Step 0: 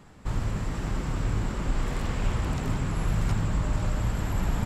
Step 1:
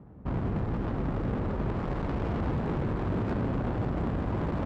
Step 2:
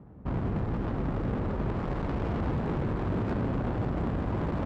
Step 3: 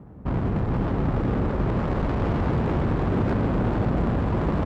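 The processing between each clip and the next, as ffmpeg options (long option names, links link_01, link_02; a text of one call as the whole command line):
ffmpeg -i in.wav -af "aeval=exprs='0.0422*(abs(mod(val(0)/0.0422+3,4)-2)-1)':channel_layout=same,highpass=44,adynamicsmooth=sensitivity=2.5:basefreq=570,volume=4.5dB" out.wav
ffmpeg -i in.wav -af anull out.wav
ffmpeg -i in.wav -af "aecho=1:1:440:0.531,volume=5.5dB" out.wav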